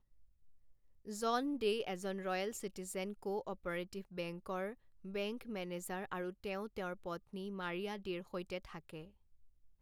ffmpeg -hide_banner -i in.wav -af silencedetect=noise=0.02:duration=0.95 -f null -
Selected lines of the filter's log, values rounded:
silence_start: 0.00
silence_end: 1.16 | silence_duration: 1.16
silence_start: 8.58
silence_end: 9.81 | silence_duration: 1.23